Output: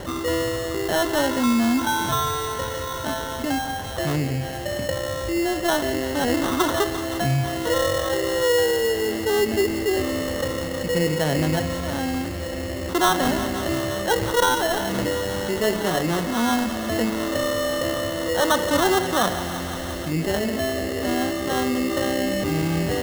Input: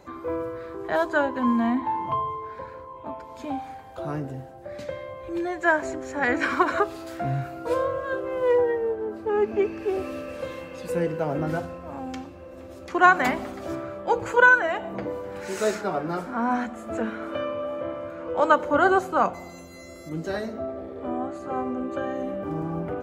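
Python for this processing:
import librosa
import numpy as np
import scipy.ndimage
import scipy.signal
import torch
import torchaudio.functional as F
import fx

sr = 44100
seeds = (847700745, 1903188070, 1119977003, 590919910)

p1 = scipy.ndimage.median_filter(x, 25, mode='constant')
p2 = scipy.signal.sosfilt(scipy.signal.ellip(4, 1.0, 40, 4800.0, 'lowpass', fs=sr, output='sos'), p1)
p3 = fx.low_shelf(p2, sr, hz=130.0, db=7.5)
p4 = fx.sample_hold(p3, sr, seeds[0], rate_hz=2400.0, jitter_pct=0)
p5 = p4 + fx.echo_thinned(p4, sr, ms=173, feedback_pct=82, hz=420.0, wet_db=-19.5, dry=0)
y = fx.env_flatten(p5, sr, amount_pct=50)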